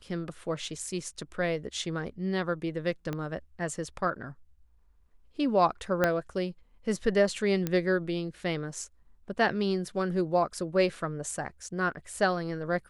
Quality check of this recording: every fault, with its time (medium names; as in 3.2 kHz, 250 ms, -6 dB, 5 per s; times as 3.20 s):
3.13 s: pop -20 dBFS
6.04 s: pop -11 dBFS
7.67 s: pop -15 dBFS